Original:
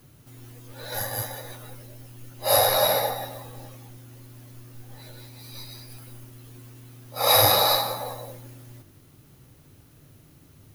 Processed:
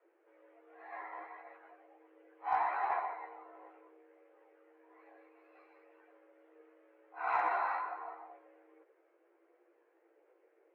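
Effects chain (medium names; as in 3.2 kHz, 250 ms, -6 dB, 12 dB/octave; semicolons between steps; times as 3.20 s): chorus voices 2, 0.68 Hz, delay 15 ms, depth 1.5 ms; mistuned SSB +200 Hz 180–2100 Hz; Chebyshev shaper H 4 -32 dB, 6 -37 dB, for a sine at -12.5 dBFS; trim -8 dB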